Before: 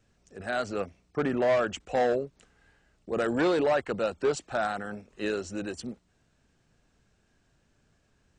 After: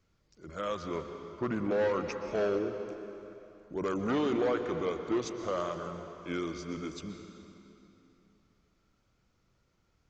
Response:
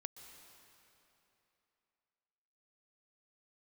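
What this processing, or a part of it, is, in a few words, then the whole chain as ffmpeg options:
slowed and reverbed: -filter_complex "[0:a]asetrate=36603,aresample=44100[link_01];[1:a]atrim=start_sample=2205[link_02];[link_01][link_02]afir=irnorm=-1:irlink=0"

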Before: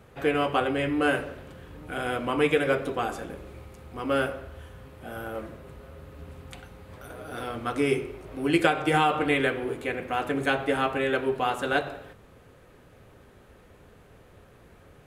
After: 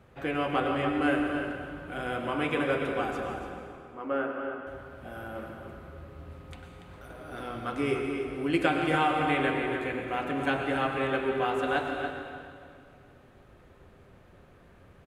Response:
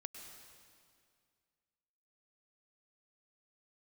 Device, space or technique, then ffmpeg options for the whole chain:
swimming-pool hall: -filter_complex "[0:a]bandreject=frequency=450:width=12,asettb=1/sr,asplit=3[link_01][link_02][link_03];[link_01]atrim=end=3.494[link_04];[link_02]atrim=start=3.49:end=4.67,asetpts=PTS-STARTPTS,afade=type=in:duration=0.004:curve=qsin,afade=type=out:start_time=1.176:duration=0.004:curve=qsin,acrossover=split=200 2200:gain=0.0708 1 0.1[link_05][link_06][link_07];[link_05][link_06][link_07]amix=inputs=3:normalize=0[link_08];[link_03]atrim=start=4.666[link_09];[link_04][link_08]acrossfade=duration=0.004:curve1=hsin:curve2=qsin[link_10];[link_10][link_09]acrossfade=duration=0.004:curve1=qsin:curve2=hsin,asplit=2[link_11][link_12];[link_12]adelay=285.7,volume=-7dB,highshelf=frequency=4000:gain=-6.43[link_13];[link_11][link_13]amix=inputs=2:normalize=0[link_14];[1:a]atrim=start_sample=2205[link_15];[link_14][link_15]afir=irnorm=-1:irlink=0,highshelf=frequency=5600:gain=-8,volume=1.5dB"

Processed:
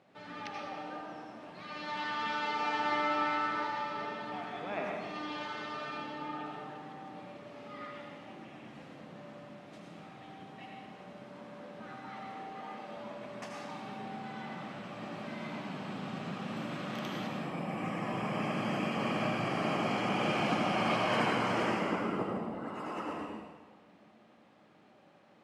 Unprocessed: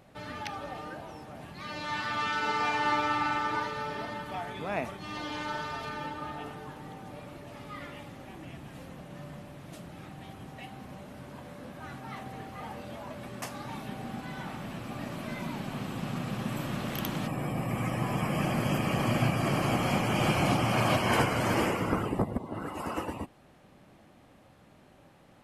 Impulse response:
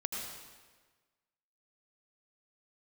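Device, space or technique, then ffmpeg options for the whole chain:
supermarket ceiling speaker: -filter_complex "[0:a]highpass=200,lowpass=5200[link_01];[1:a]atrim=start_sample=2205[link_02];[link_01][link_02]afir=irnorm=-1:irlink=0,asettb=1/sr,asplit=3[link_03][link_04][link_05];[link_03]atrim=end=12.504[link_06];[link_04]atrim=start=12.5:end=12.97,asetpts=PTS-STARTPTS,afade=type=in:duration=0.004:curve=qsin,afade=type=out:start_time=0.466:duration=0.004:curve=qsin,highpass=160[link_07];[link_05]atrim=start=12.966[link_08];[link_06][link_07]acrossfade=duration=0.004:curve1=hsin:curve2=qsin[link_09];[link_09][link_08]acrossfade=duration=0.004:curve1=qsin:curve2=hsin,volume=-5dB"

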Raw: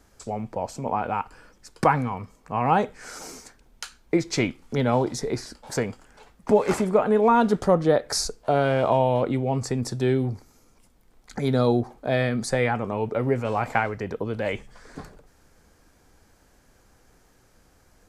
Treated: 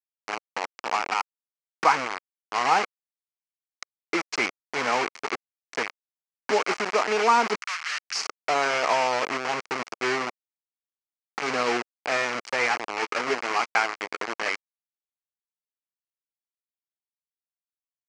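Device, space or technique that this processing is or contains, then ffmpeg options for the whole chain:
hand-held game console: -filter_complex "[0:a]acrusher=bits=3:mix=0:aa=0.000001,highpass=480,equalizer=frequency=560:width_type=q:width=4:gain=-7,equalizer=frequency=1200:width_type=q:width=4:gain=4,equalizer=frequency=2200:width_type=q:width=4:gain=5,equalizer=frequency=3600:width_type=q:width=4:gain=-9,lowpass=frequency=5900:width=0.5412,lowpass=frequency=5900:width=1.3066,asplit=3[link_01][link_02][link_03];[link_01]afade=type=out:start_time=7.55:duration=0.02[link_04];[link_02]highpass=frequency=1400:width=0.5412,highpass=frequency=1400:width=1.3066,afade=type=in:start_time=7.55:duration=0.02,afade=type=out:start_time=8.14:duration=0.02[link_05];[link_03]afade=type=in:start_time=8.14:duration=0.02[link_06];[link_04][link_05][link_06]amix=inputs=3:normalize=0,asettb=1/sr,asplit=3[link_07][link_08][link_09];[link_07]atrim=end=12.934[link_10];[link_08]atrim=start=12.93:end=14.33,asetpts=PTS-STARTPTS,afade=type=in:duration=0.004:curve=qsin,afade=type=out:start_time=1.396:duration=0.004:curve=qsin,asplit=2[link_11][link_12];[link_12]adelay=12,volume=-10.5dB[link_13];[link_11][link_13]amix=inputs=2:normalize=0,atrim=end_sample=61740[link_14];[link_09]atrim=start=14.326[link_15];[link_10][link_14]acrossfade=duration=0.004:curve1=hsin:curve2=qsin[link_16];[link_16][link_15]acrossfade=duration=0.004:curve1=qsin:curve2=hsin"

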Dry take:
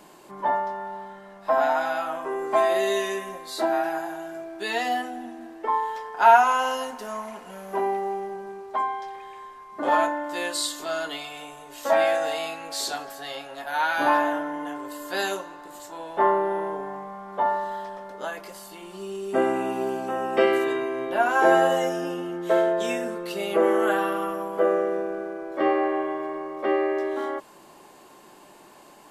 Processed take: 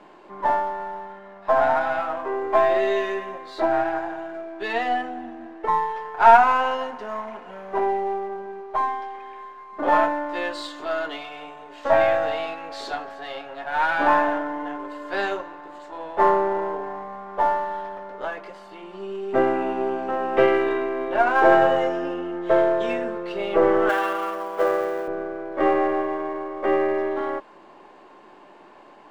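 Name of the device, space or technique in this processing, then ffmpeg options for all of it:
crystal radio: -filter_complex "[0:a]highpass=220,lowpass=2500,aeval=exprs='if(lt(val(0),0),0.708*val(0),val(0))':channel_layout=same,asettb=1/sr,asplit=3[link_01][link_02][link_03];[link_01]atrim=end=23.894[link_04];[link_02]atrim=start=23.89:end=25.08,asetpts=PTS-STARTPTS,afade=type=in:duration=0.004:curve=qsin,afade=type=out:start_time=1.186:duration=0.004:curve=qsin,aemphasis=mode=production:type=riaa[link_05];[link_03]atrim=start=25.076[link_06];[link_04][link_05]acrossfade=duration=0.004:curve1=hsin:curve2=qsin[link_07];[link_07][link_06]acrossfade=duration=0.004:curve1=qsin:curve2=hsin,volume=4dB"

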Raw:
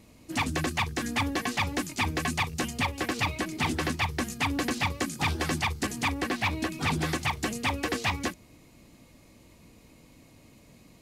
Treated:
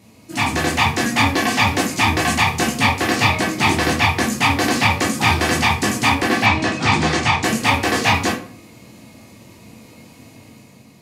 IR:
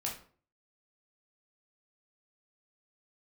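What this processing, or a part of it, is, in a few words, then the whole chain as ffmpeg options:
far laptop microphone: -filter_complex "[1:a]atrim=start_sample=2205[link_01];[0:a][link_01]afir=irnorm=-1:irlink=0,highpass=110,dynaudnorm=framelen=160:gausssize=7:maxgain=5dB,asettb=1/sr,asplit=3[link_02][link_03][link_04];[link_02]atrim=end=6.464[link_05];[link_03]atrim=start=6.46:end=7.44,asetpts=PTS-STARTPTS,afade=type=in:duration=0.004:curve=qsin,afade=type=out:start_time=0.976:duration=0.004:curve=qsin,lowpass=frequency=7800:width=0.5412,lowpass=frequency=7800:width=1.3066[link_06];[link_04]atrim=start=7.436[link_07];[link_05][link_06]acrossfade=duration=0.004:curve1=hsin:curve2=qsin[link_08];[link_08][link_07]acrossfade=duration=0.004:curve1=qsin:curve2=hsin,volume=6dB"

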